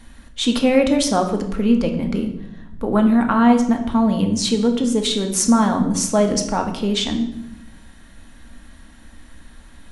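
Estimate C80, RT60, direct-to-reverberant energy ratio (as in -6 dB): 11.5 dB, 0.85 s, 3.5 dB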